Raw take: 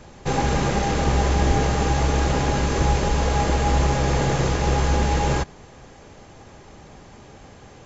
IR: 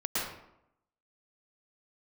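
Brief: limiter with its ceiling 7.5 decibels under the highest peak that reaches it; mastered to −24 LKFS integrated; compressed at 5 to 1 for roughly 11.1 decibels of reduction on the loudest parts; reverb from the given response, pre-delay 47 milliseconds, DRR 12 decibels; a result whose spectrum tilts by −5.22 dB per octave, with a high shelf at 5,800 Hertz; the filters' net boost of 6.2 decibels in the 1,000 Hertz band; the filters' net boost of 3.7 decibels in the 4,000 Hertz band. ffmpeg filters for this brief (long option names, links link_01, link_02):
-filter_complex "[0:a]equalizer=frequency=1000:width_type=o:gain=8,equalizer=frequency=4000:width_type=o:gain=7,highshelf=frequency=5800:gain=-7.5,acompressor=threshold=-26dB:ratio=5,alimiter=limit=-23dB:level=0:latency=1,asplit=2[link_01][link_02];[1:a]atrim=start_sample=2205,adelay=47[link_03];[link_02][link_03]afir=irnorm=-1:irlink=0,volume=-20dB[link_04];[link_01][link_04]amix=inputs=2:normalize=0,volume=9.5dB"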